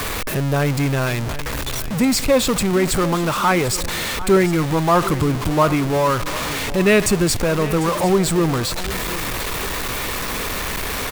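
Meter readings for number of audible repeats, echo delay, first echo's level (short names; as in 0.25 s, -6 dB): 2, 0.748 s, -15.5 dB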